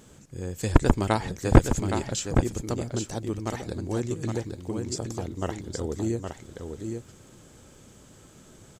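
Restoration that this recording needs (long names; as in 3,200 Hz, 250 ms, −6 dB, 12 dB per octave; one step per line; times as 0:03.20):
click removal
echo removal 816 ms −6 dB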